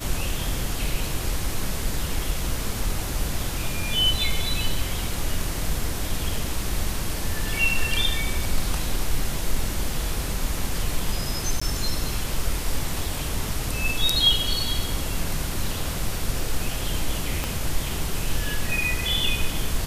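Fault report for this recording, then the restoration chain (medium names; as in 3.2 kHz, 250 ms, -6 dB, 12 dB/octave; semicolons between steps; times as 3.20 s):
11.60–11.62 s: dropout 15 ms
17.44 s: pop -10 dBFS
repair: de-click; interpolate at 11.60 s, 15 ms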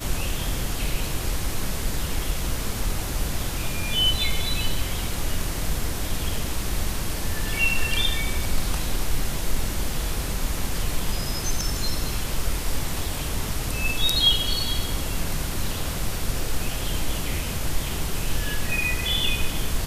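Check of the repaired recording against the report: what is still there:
17.44 s: pop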